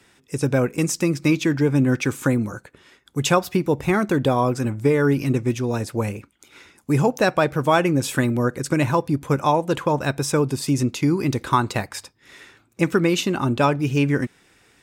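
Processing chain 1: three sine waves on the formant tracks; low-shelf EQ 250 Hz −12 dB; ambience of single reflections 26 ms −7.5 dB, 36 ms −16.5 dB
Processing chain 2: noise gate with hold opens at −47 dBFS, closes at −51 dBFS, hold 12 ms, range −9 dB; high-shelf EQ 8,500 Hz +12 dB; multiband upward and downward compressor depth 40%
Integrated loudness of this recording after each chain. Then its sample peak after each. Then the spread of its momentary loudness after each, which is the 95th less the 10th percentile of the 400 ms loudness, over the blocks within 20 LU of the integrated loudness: −23.5, −21.0 LKFS; −6.0, −2.5 dBFS; 10, 10 LU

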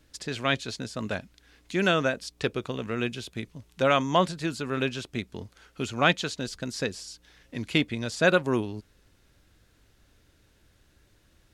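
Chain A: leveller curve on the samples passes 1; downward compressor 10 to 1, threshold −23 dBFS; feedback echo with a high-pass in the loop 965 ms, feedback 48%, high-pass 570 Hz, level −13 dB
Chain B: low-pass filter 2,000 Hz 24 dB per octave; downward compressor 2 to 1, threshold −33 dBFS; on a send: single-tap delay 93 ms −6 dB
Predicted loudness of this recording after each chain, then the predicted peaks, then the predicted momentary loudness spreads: −30.5, −35.0 LKFS; −11.5, −16.0 dBFS; 16, 11 LU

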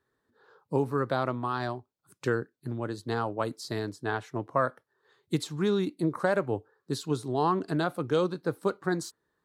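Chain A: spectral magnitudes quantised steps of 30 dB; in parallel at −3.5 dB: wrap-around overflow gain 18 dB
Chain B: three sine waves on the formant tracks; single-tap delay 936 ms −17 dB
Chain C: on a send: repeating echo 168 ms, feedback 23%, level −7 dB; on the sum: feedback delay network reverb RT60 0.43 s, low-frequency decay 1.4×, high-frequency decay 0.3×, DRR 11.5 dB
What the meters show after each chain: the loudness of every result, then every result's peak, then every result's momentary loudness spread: −27.5, −30.5, −29.5 LKFS; −11.0, −14.0, −11.5 dBFS; 7, 11, 8 LU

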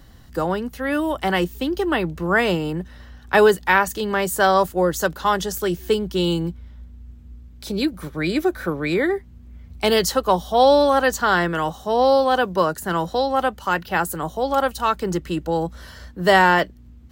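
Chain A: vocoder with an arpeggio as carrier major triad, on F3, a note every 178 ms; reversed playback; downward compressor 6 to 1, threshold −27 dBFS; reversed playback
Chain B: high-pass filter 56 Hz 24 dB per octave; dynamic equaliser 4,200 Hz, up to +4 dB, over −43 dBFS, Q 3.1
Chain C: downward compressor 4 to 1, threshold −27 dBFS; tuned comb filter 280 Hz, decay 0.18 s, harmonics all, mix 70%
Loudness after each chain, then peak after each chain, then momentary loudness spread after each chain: −31.5, −20.5, −38.0 LKFS; −18.0, −3.0, −19.0 dBFS; 6, 10, 11 LU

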